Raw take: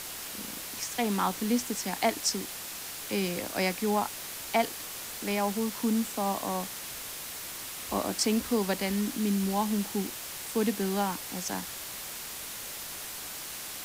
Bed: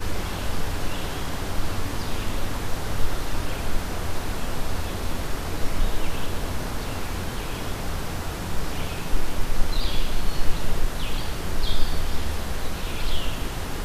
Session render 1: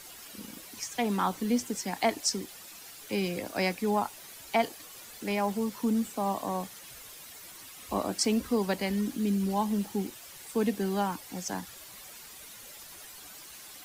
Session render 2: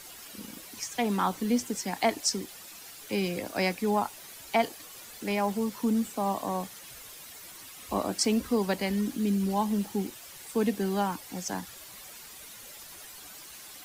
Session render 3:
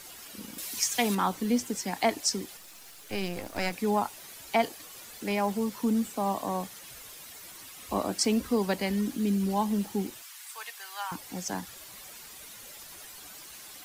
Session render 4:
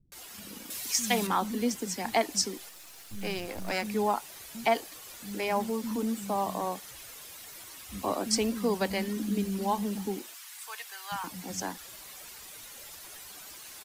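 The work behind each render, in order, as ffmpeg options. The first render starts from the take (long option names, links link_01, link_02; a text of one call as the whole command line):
ffmpeg -i in.wav -af "afftdn=noise_reduction=11:noise_floor=-40" out.wav
ffmpeg -i in.wav -af "volume=1dB" out.wav
ffmpeg -i in.wav -filter_complex "[0:a]asettb=1/sr,asplit=3[link_01][link_02][link_03];[link_01]atrim=end=0.584[link_04];[link_02]atrim=start=0.58:end=1.15,asetpts=PTS-STARTPTS,afade=type=in:duration=0.004:curve=qsin,afade=type=out:start_time=0.566:duration=0.004:curve=qsin,highshelf=frequency=2200:gain=10[link_05];[link_03]atrim=start=1.146[link_06];[link_04][link_05]acrossfade=duration=0.004:curve1=hsin:curve2=qsin[link_07];[link_07][link_06]acrossfade=duration=0.004:curve1=qsin:curve2=hsin,asettb=1/sr,asplit=3[link_08][link_09][link_10];[link_08]atrim=end=2.574[link_11];[link_09]atrim=start=2.57:end=3.73,asetpts=PTS-STARTPTS,afade=type=in:duration=0.004:curve=qsin,afade=type=out:start_time=1.156:duration=0.004:curve=qsin,aeval=exprs='if(lt(val(0),0),0.251*val(0),val(0))':channel_layout=same[link_12];[link_10]atrim=start=3.726[link_13];[link_11][link_12]acrossfade=duration=0.004:curve1=hsin:curve2=qsin[link_14];[link_14][link_13]acrossfade=duration=0.004:curve1=qsin:curve2=hsin,asettb=1/sr,asplit=3[link_15][link_16][link_17];[link_15]atrim=end=10.224[link_18];[link_16]atrim=start=10.22:end=11.12,asetpts=PTS-STARTPTS,afade=type=in:duration=0.004:curve=qsin,afade=type=out:start_time=0.896:duration=0.004:curve=qsin,highpass=frequency=1000:width=0.5412,highpass=frequency=1000:width=1.3066[link_19];[link_17]atrim=start=11.116[link_20];[link_18][link_19]acrossfade=duration=0.004:curve1=hsin:curve2=qsin[link_21];[link_21][link_20]acrossfade=duration=0.004:curve1=qsin:curve2=hsin" out.wav
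ffmpeg -i in.wav -filter_complex "[0:a]acrossover=split=200[link_01][link_02];[link_02]adelay=120[link_03];[link_01][link_03]amix=inputs=2:normalize=0" out.wav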